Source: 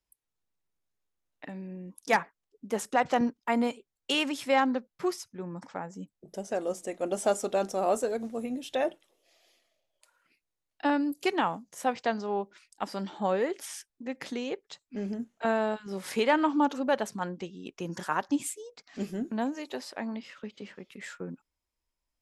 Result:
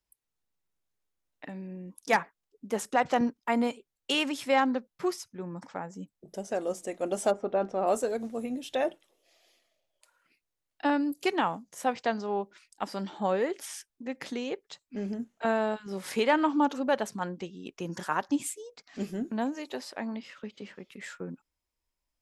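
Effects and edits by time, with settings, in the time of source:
7.3–7.86 LPF 1200 Hz -> 2800 Hz

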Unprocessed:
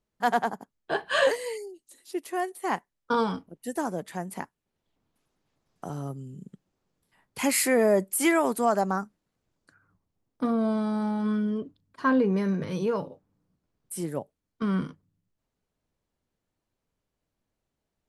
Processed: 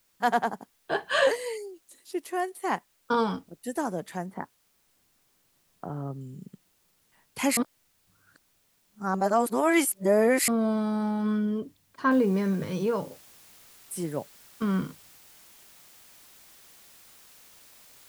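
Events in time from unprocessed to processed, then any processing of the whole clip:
4.26–6.21 polynomial smoothing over 41 samples
7.57–10.48 reverse
12.11 noise floor step -69 dB -54 dB

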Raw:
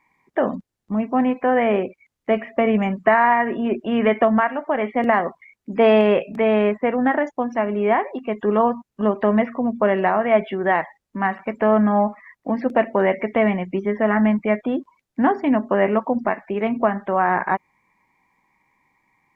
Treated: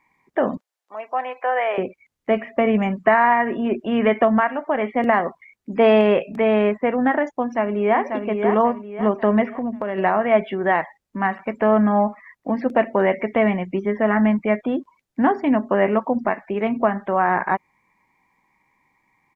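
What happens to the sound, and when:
0.57–1.78 HPF 560 Hz 24 dB/oct
7.4–8 echo throw 0.54 s, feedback 40%, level -5.5 dB
9.46–9.98 compressor, threshold -21 dBFS

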